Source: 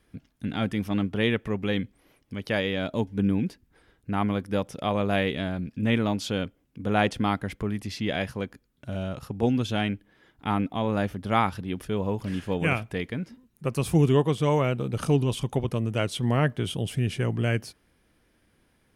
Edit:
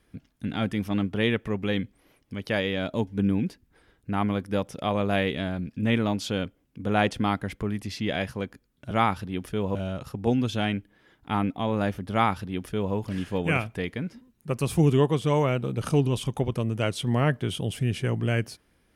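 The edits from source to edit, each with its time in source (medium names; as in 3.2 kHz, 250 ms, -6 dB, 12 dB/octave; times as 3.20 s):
11.27–12.11 s: copy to 8.91 s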